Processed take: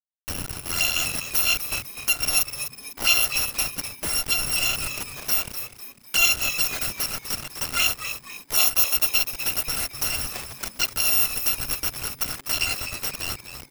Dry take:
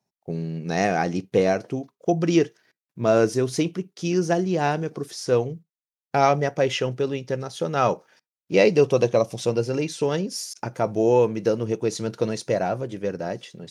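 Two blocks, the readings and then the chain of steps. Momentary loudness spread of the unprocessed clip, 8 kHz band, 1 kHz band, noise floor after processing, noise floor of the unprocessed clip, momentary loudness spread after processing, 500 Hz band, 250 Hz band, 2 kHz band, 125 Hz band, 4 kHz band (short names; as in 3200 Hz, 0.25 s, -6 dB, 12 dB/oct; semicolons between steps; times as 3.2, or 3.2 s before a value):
11 LU, +12.5 dB, -9.0 dB, -49 dBFS, under -85 dBFS, 12 LU, -21.0 dB, -17.5 dB, +6.5 dB, -12.0 dB, +11.0 dB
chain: FFT order left unsorted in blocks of 256 samples; HPF 1100 Hz 12 dB/oct; in parallel at +1 dB: upward compressor, threshold -21 dBFS; on the sum: envelope flanger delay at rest 4 ms, full sweep at -11.5 dBFS; sample gate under -21 dBFS; high shelf 2900 Hz -12 dB; frequency-shifting echo 0.25 s, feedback 41%, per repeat -140 Hz, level -10 dB; gain +5 dB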